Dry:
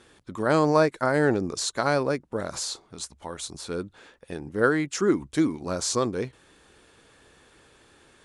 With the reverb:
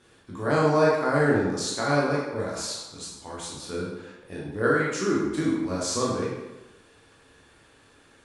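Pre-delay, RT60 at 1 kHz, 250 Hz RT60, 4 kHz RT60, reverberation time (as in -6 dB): 14 ms, 1.0 s, 1.0 s, 0.80 s, 1.0 s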